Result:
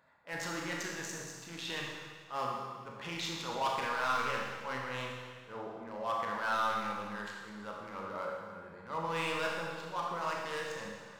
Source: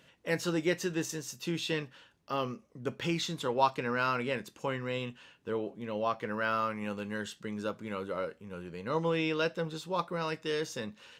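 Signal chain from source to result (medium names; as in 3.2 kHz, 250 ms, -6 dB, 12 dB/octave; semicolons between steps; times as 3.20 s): local Wiener filter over 15 samples; resonant low shelf 570 Hz -10.5 dB, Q 1.5; transient shaper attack -9 dB, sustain +3 dB; hard clipper -30 dBFS, distortion -9 dB; Schroeder reverb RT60 1.6 s, combs from 27 ms, DRR -1.5 dB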